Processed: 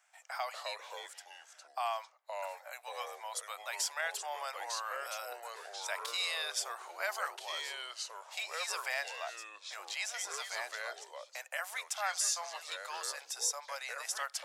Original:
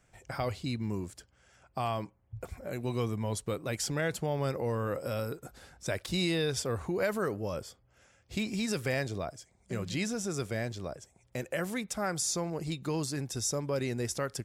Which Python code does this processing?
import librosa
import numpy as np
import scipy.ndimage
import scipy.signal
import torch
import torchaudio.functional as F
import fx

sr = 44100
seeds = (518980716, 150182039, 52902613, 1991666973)

y = scipy.signal.sosfilt(scipy.signal.butter(8, 690.0, 'highpass', fs=sr, output='sos'), x)
y = fx.echo_pitch(y, sr, ms=184, semitones=-3, count=2, db_per_echo=-6.0)